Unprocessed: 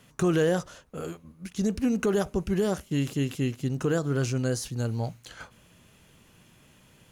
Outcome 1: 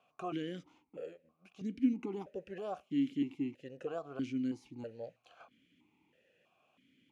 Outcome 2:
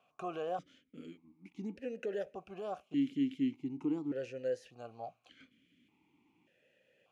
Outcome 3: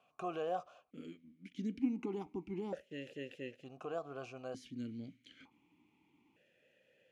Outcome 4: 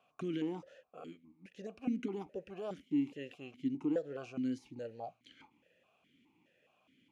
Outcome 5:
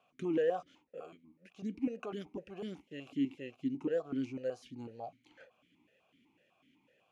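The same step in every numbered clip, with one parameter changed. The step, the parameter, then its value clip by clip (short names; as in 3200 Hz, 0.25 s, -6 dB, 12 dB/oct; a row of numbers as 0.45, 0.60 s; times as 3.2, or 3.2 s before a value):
vowel sequencer, rate: 3.1, 1.7, 1.1, 4.8, 8 Hz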